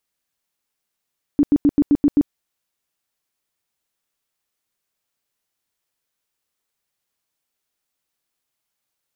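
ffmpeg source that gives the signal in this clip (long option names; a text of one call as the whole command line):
ffmpeg -f lavfi -i "aevalsrc='0.316*sin(2*PI*289*mod(t,0.13))*lt(mod(t,0.13),12/289)':duration=0.91:sample_rate=44100" out.wav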